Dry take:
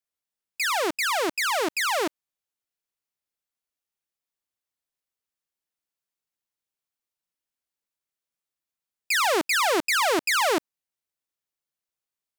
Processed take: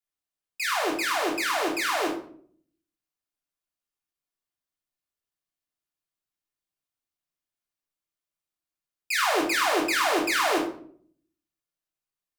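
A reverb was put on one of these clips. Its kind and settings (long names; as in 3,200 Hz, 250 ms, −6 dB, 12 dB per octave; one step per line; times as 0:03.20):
rectangular room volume 700 cubic metres, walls furnished, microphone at 3.2 metres
level −6 dB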